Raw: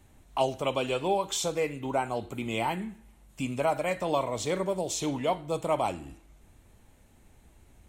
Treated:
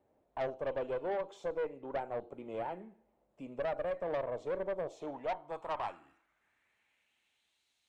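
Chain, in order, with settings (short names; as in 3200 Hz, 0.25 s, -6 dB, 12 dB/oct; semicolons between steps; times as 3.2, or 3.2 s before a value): band-pass sweep 540 Hz -> 4000 Hz, 4.81–7.66; tube stage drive 30 dB, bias 0.4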